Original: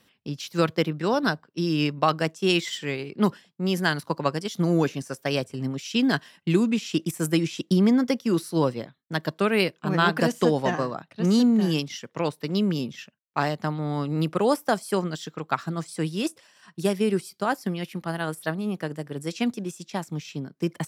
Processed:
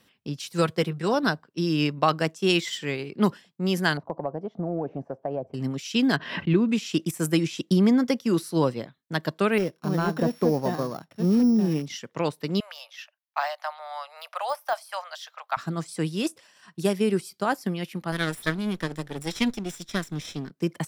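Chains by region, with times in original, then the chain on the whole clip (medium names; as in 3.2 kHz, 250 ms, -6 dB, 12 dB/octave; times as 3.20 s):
0.39–1.14 s: peaking EQ 8.9 kHz +10 dB 0.44 oct + comb of notches 300 Hz
3.97–5.54 s: resonant low-pass 710 Hz, resonance Q 3.7 + compression 3:1, threshold -28 dBFS
6.16–6.69 s: distance through air 310 m + band-stop 790 Hz, Q 8.7 + swell ahead of each attack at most 71 dB/s
9.58–11.86 s: sorted samples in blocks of 8 samples + de-esser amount 65% + treble shelf 2.3 kHz -8 dB
12.60–15.57 s: steep high-pass 600 Hz 72 dB/octave + peaking EQ 7.5 kHz -10.5 dB 0.31 oct + de-esser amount 95%
18.12–20.51 s: comb filter that takes the minimum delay 0.55 ms + peaking EQ 3.9 kHz +5.5 dB 2.3 oct
whole clip: none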